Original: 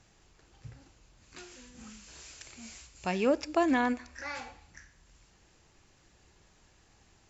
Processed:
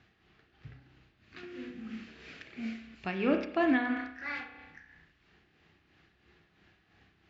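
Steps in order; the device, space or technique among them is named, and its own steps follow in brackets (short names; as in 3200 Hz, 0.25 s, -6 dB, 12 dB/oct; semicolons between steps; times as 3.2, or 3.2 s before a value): combo amplifier with spring reverb and tremolo (spring tank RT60 1 s, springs 31 ms, chirp 65 ms, DRR 4 dB; tremolo 3 Hz, depth 53%; speaker cabinet 85–3800 Hz, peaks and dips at 120 Hz -4 dB, 540 Hz -9 dB, 930 Hz -9 dB, 1800 Hz +3 dB); 1.43–2.95 ten-band EQ 125 Hz +3 dB, 250 Hz +9 dB, 500 Hz +8 dB, 2000 Hz +4 dB; gain +2 dB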